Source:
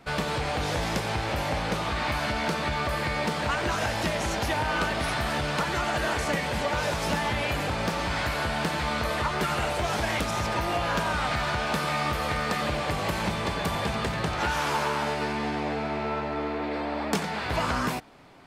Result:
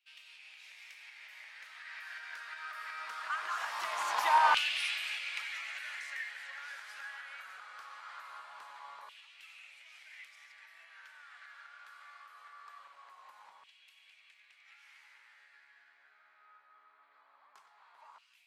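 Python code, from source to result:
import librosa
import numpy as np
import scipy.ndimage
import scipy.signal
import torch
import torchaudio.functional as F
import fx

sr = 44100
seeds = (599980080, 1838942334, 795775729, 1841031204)

y = fx.doppler_pass(x, sr, speed_mps=19, closest_m=6.0, pass_at_s=4.49)
y = fx.filter_lfo_highpass(y, sr, shape='saw_down', hz=0.22, low_hz=950.0, high_hz=2800.0, q=4.2)
y = y * librosa.db_to_amplitude(-3.5)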